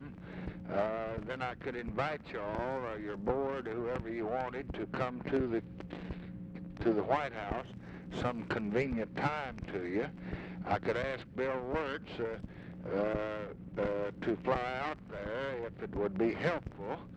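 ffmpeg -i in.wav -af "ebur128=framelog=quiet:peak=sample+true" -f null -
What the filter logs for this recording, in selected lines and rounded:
Integrated loudness:
  I:         -36.9 LUFS
  Threshold: -46.9 LUFS
Loudness range:
  LRA:         1.7 LU
  Threshold: -56.9 LUFS
  LRA low:   -37.6 LUFS
  LRA high:  -35.9 LUFS
Sample peak:
  Peak:      -17.2 dBFS
True peak:
  Peak:      -17.1 dBFS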